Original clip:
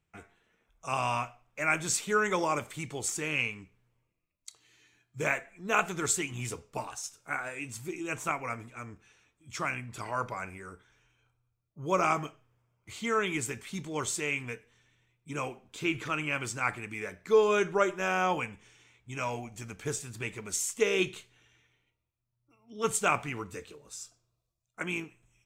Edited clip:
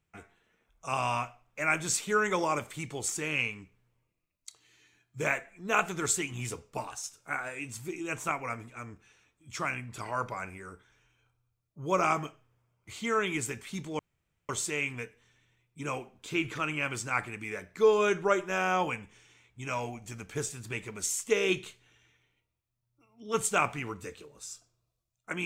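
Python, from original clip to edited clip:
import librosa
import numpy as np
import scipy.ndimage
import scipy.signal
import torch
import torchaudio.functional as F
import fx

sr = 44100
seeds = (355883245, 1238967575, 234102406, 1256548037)

y = fx.edit(x, sr, fx.insert_room_tone(at_s=13.99, length_s=0.5), tone=tone)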